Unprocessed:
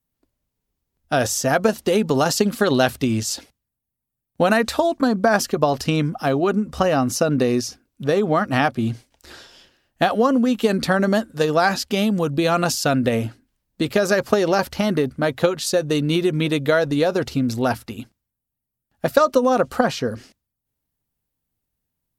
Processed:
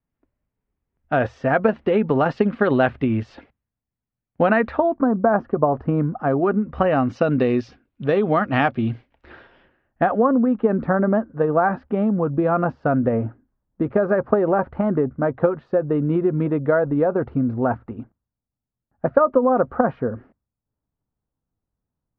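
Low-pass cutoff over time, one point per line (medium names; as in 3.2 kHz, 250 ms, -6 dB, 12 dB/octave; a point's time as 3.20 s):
low-pass 24 dB/octave
4.60 s 2.3 kHz
5.06 s 1.3 kHz
5.96 s 1.3 kHz
7.26 s 3 kHz
8.81 s 3 kHz
10.49 s 1.4 kHz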